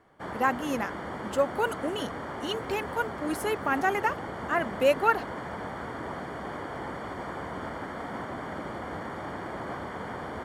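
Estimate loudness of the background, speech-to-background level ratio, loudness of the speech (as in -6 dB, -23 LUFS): -37.0 LUFS, 8.0 dB, -29.0 LUFS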